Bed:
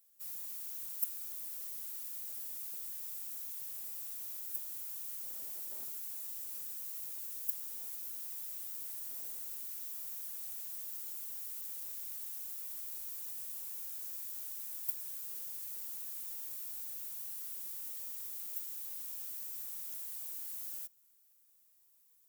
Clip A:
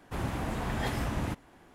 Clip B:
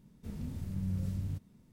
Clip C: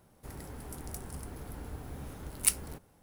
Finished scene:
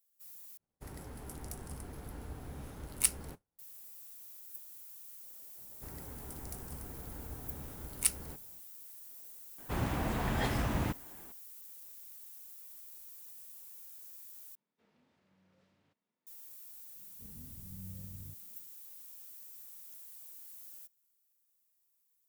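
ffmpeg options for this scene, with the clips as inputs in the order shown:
-filter_complex "[3:a]asplit=2[a][b];[2:a]asplit=2[c][d];[0:a]volume=-8dB[e];[a]agate=range=-33dB:threshold=-49dB:ratio=3:release=100:detection=peak[f];[c]highpass=610,lowpass=3.4k[g];[e]asplit=3[h][i][j];[h]atrim=end=0.574[k];[f]atrim=end=3.02,asetpts=PTS-STARTPTS,volume=-2.5dB[l];[i]atrim=start=3.586:end=14.554[m];[g]atrim=end=1.72,asetpts=PTS-STARTPTS,volume=-13.5dB[n];[j]atrim=start=16.266[o];[b]atrim=end=3.02,asetpts=PTS-STARTPTS,volume=-3.5dB,afade=t=in:d=0.004:c=hsin,afade=t=out:st=3.016:d=0.004:c=hsin,adelay=5580[p];[1:a]atrim=end=1.74,asetpts=PTS-STARTPTS,volume=-0.5dB,afade=t=in:d=0.004:c=hsin,afade=t=out:st=1.736:d=0.004:c=hsin,adelay=9580[q];[d]atrim=end=1.72,asetpts=PTS-STARTPTS,volume=-13dB,afade=t=in:d=0.004:c=hsin,afade=t=out:st=1.716:d=0.004:c=hsin,adelay=16960[r];[k][l]acrossfade=d=0.004:c1=hsin:c2=hsin[s];[s][m]acrossfade=d=0.004:c1=hsin:c2=hsin[t];[t][n]acrossfade=d=0.004:c1=hsin:c2=hsin[u];[u][o]acrossfade=d=0.004:c1=hsin:c2=hsin[v];[v][p][q][r]amix=inputs=4:normalize=0"

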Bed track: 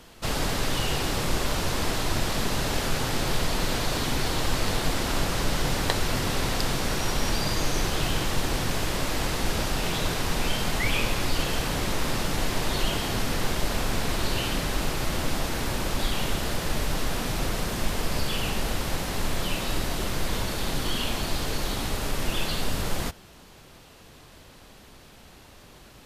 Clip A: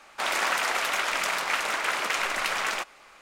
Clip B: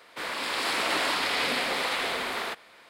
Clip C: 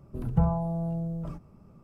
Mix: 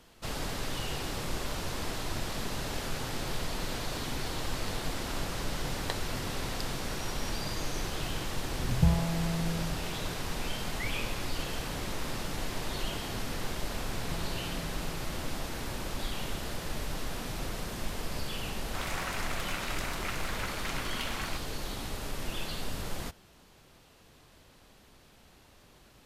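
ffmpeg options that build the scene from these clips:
-filter_complex "[3:a]asplit=2[a][b];[0:a]volume=-8.5dB[c];[a]lowshelf=f=180:g=10,atrim=end=1.83,asetpts=PTS-STARTPTS,volume=-7dB,afade=t=in:d=0.004:c=hsin,afade=t=out:st=1.826:d=0.004:c=hsin,adelay=8450[d];[b]atrim=end=1.83,asetpts=PTS-STARTPTS,volume=-17dB,afade=t=in:d=0.004:c=hsin,afade=t=out:st=1.826:d=0.004:c=hsin,adelay=13740[e];[1:a]atrim=end=3.21,asetpts=PTS-STARTPTS,volume=-11.5dB,afade=t=in:d=0.004:c=hsin,afade=t=out:st=3.206:d=0.004:c=hsin,adelay=18550[f];[c][d][e][f]amix=inputs=4:normalize=0"

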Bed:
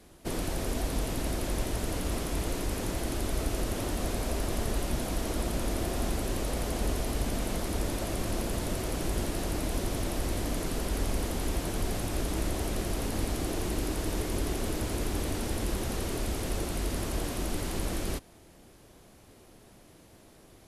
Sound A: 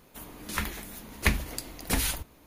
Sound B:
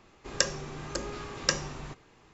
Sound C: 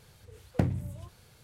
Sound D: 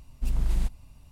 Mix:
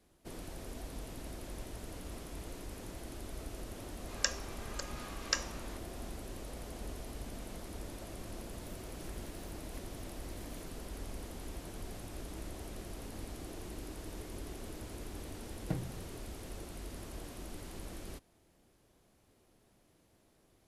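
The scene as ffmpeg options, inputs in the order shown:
-filter_complex "[0:a]volume=-13.5dB[a];[2:a]highpass=740[b];[1:a]acompressor=threshold=-49dB:ratio=6:attack=3.2:release=140:knee=1:detection=peak[c];[3:a]aecho=1:1:6.4:0.96[d];[b]atrim=end=2.33,asetpts=PTS-STARTPTS,volume=-5.5dB,afade=t=in:d=0.004:c=hsin,afade=t=out:st=2.326:d=0.004:c=hsin,adelay=3840[e];[c]atrim=end=2.46,asetpts=PTS-STARTPTS,volume=-7.5dB,afade=t=in:d=0.004:c=hsin,afade=t=out:st=2.456:d=0.004:c=hsin,adelay=8510[f];[d]atrim=end=1.43,asetpts=PTS-STARTPTS,volume=-13dB,afade=t=in:d=0.004:c=hsin,afade=t=out:st=1.426:d=0.004:c=hsin,adelay=15110[g];[a][e][f][g]amix=inputs=4:normalize=0"

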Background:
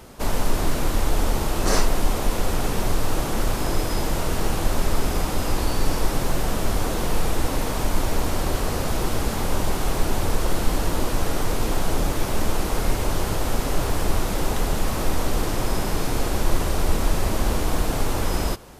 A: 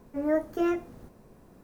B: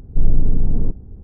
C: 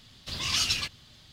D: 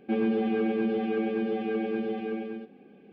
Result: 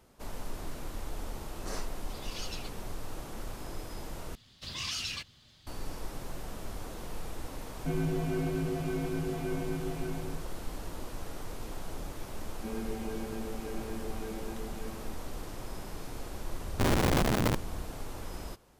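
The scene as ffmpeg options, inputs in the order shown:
-filter_complex "[3:a]asplit=2[a][b];[4:a]asplit=2[c][d];[0:a]volume=-17.5dB[e];[a]aecho=1:1:6.3:0.65[f];[b]alimiter=limit=-20dB:level=0:latency=1:release=28[g];[c]afreqshift=-66[h];[2:a]aeval=exprs='(mod(6.31*val(0)+1,2)-1)/6.31':c=same[i];[e]asplit=2[j][k];[j]atrim=end=4.354[l];[g]atrim=end=1.32,asetpts=PTS-STARTPTS,volume=-6dB[m];[k]atrim=start=5.666[n];[f]atrim=end=1.32,asetpts=PTS-STARTPTS,volume=-18dB,afade=t=in:d=0.004:c=hsin,afade=t=out:st=1.316:d=0.004:c=hsin,adelay=1820[o];[h]atrim=end=3.12,asetpts=PTS-STARTPTS,volume=-5.5dB,afade=t=in:d=0.004:c=hsin,afade=t=out:st=3.116:d=0.004:c=hsin,adelay=7770[p];[d]atrim=end=3.12,asetpts=PTS-STARTPTS,volume=-12.5dB,afade=t=in:d=0.004:c=hsin,afade=t=out:st=3.116:d=0.004:c=hsin,adelay=12540[q];[i]atrim=end=1.23,asetpts=PTS-STARTPTS,volume=-5.5dB,afade=t=in:d=0.004:c=hsin,afade=t=out:st=1.226:d=0.004:c=hsin,adelay=16640[r];[l][m]acrossfade=d=0.004:c1=hsin:c2=hsin[s];[s][n]acrossfade=d=0.004:c1=hsin:c2=hsin[t];[t][o][p][q][r]amix=inputs=5:normalize=0"

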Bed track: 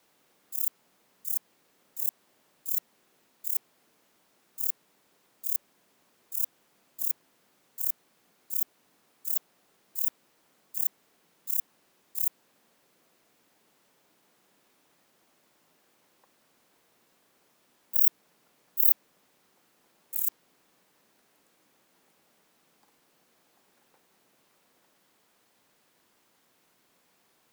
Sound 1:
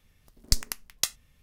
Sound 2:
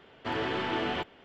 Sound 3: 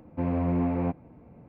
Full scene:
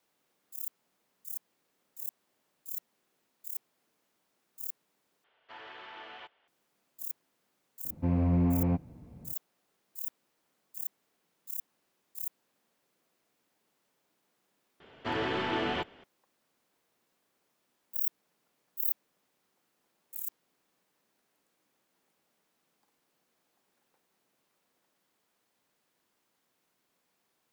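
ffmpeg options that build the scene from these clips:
-filter_complex "[2:a]asplit=2[a][b];[0:a]volume=-9.5dB[c];[a]acrossover=split=580 5600:gain=0.112 1 0.224[d][e][f];[d][e][f]amix=inputs=3:normalize=0[g];[3:a]bass=f=250:g=9,treble=f=4k:g=13[h];[c]asplit=3[i][j][k];[i]atrim=end=5.244[l];[g]atrim=end=1.24,asetpts=PTS-STARTPTS,volume=-13dB[m];[j]atrim=start=6.476:end=14.804[n];[b]atrim=end=1.24,asetpts=PTS-STARTPTS,volume=-0.5dB[o];[k]atrim=start=16.036[p];[h]atrim=end=1.48,asetpts=PTS-STARTPTS,volume=-6dB,afade=t=in:d=0.004:c=hsin,afade=t=out:st=1.476:d=0.004:c=hsin,adelay=7850[q];[l][m]acrossfade=d=0.004:c1=hsin:c2=hsin[r];[r][n]acrossfade=d=0.004:c1=hsin:c2=hsin[s];[s][o]acrossfade=d=0.004:c1=hsin:c2=hsin[t];[t][p]acrossfade=d=0.004:c1=hsin:c2=hsin[u];[u][q]amix=inputs=2:normalize=0"

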